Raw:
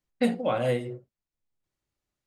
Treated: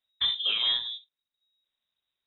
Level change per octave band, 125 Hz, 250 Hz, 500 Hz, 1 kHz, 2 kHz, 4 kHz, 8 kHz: under -25 dB, under -30 dB, -27.0 dB, -12.5 dB, -0.5 dB, +20.5 dB, under -30 dB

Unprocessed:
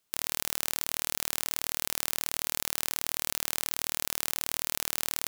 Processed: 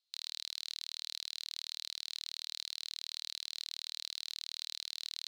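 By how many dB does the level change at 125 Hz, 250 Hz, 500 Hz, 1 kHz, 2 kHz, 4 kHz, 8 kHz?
under -40 dB, under -35 dB, under -30 dB, -24.0 dB, -15.5 dB, -1.5 dB, -15.5 dB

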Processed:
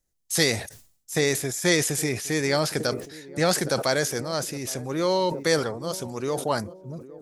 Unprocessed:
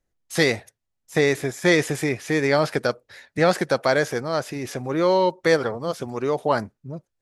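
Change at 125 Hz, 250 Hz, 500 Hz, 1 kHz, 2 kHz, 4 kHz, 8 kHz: -1.5, -3.0, -4.5, -4.5, -4.0, +2.5, +8.0 dB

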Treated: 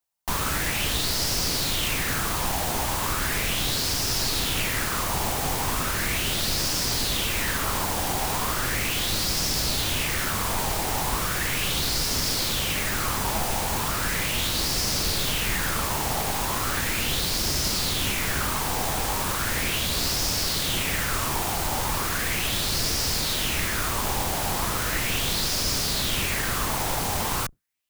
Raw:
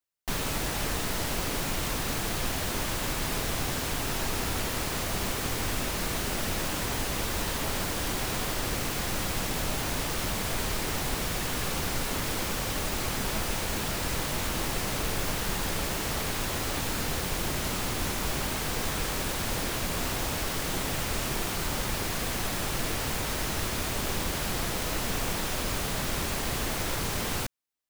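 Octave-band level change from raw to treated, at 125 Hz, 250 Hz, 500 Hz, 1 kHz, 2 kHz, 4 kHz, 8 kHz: +3.0, +1.5, +1.5, +5.0, +5.0, +7.5, +6.0 dB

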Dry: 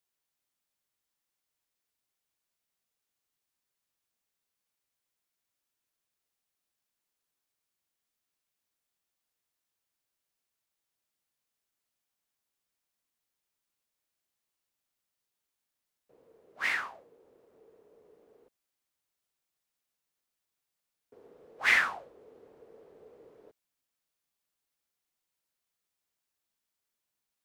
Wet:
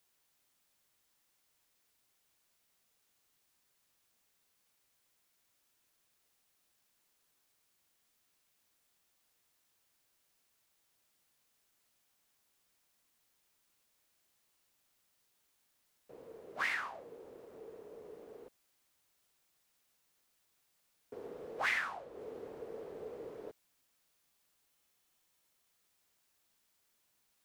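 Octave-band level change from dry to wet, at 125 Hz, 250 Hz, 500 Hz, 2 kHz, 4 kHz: n/a, +3.5 dB, +6.0 dB, -8.0 dB, -8.0 dB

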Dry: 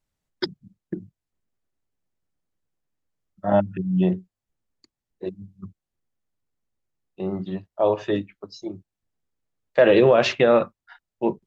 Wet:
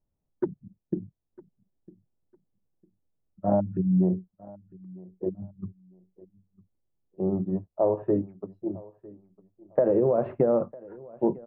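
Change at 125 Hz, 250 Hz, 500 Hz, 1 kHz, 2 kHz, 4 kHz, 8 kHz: -1.0 dB, -2.0 dB, -5.5 dB, -7.5 dB, under -20 dB, under -40 dB, n/a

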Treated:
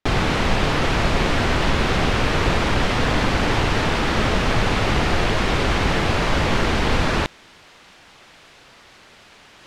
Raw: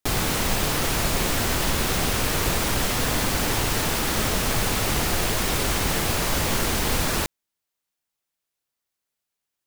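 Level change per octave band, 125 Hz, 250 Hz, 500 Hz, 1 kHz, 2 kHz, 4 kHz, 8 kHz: +5.5, +5.5, +5.5, +5.5, +5.0, +1.0, -9.5 dB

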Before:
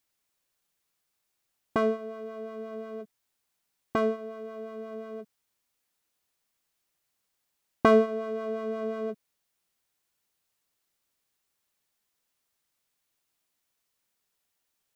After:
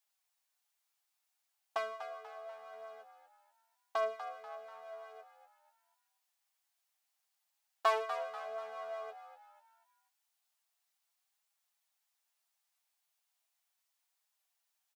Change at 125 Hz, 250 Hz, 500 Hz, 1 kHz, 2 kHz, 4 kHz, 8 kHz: under -40 dB, under -40 dB, -12.0 dB, -4.0 dB, -6.5 dB, -2.5 dB, n/a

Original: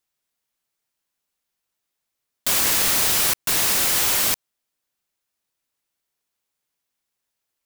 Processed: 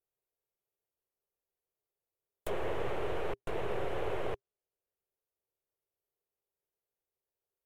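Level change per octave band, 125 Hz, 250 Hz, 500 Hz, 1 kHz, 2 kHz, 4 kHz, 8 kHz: -5.5 dB, -7.5 dB, 0.0 dB, -10.0 dB, -18.0 dB, -28.0 dB, under -40 dB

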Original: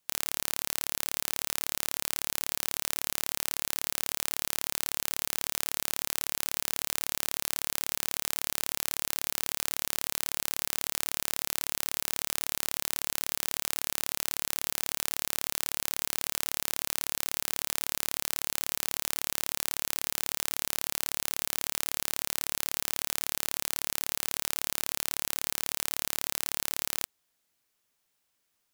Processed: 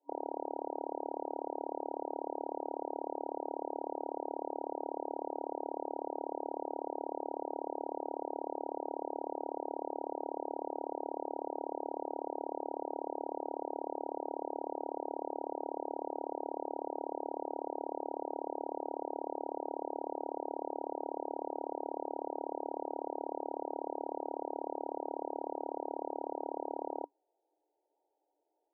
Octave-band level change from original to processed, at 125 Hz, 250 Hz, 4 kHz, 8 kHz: under -35 dB, +5.5 dB, under -40 dB, under -40 dB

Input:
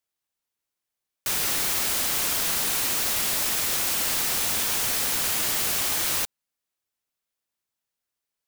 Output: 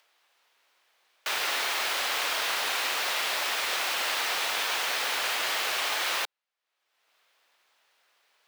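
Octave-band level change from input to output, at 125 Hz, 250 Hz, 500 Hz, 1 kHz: under -20 dB, -10.5 dB, +0.5 dB, +3.5 dB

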